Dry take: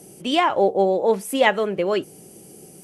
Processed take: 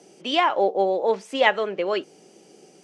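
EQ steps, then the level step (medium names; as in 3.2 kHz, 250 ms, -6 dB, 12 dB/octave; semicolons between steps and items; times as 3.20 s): high-pass 190 Hz 12 dB/octave; low-pass 6.2 kHz 24 dB/octave; bass shelf 270 Hz -11 dB; 0.0 dB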